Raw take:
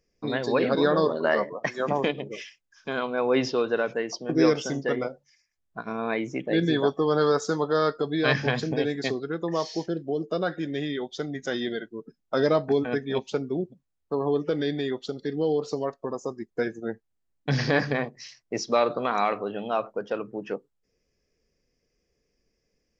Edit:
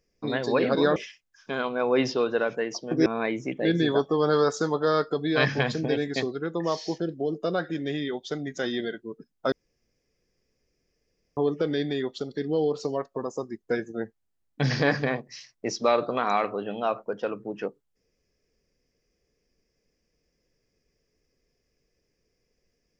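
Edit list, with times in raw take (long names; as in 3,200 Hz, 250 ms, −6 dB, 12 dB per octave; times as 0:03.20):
0:00.96–0:02.34: remove
0:04.44–0:05.94: remove
0:12.40–0:14.25: fill with room tone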